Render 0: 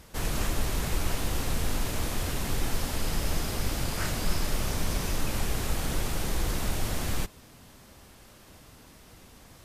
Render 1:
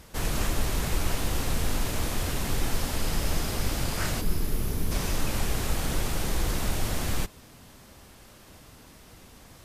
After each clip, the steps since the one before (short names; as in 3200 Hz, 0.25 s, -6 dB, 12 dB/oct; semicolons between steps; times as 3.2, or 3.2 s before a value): spectral gain 4.21–4.92, 490–9700 Hz -8 dB; gain +1.5 dB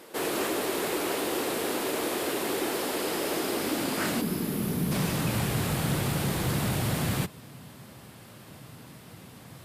bell 6100 Hz -6 dB 0.57 oct; high-pass sweep 360 Hz -> 130 Hz, 3.31–5.37; soft clip -19 dBFS, distortion -26 dB; gain +2.5 dB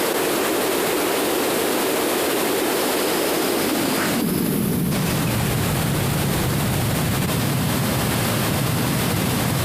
fast leveller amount 100%; gain +4.5 dB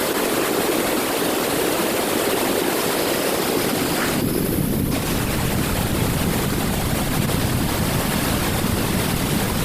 whisperiser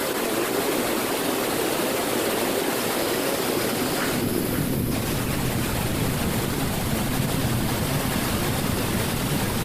flange 1.5 Hz, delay 7.1 ms, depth 2.1 ms, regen +65%; echo 0.534 s -7.5 dB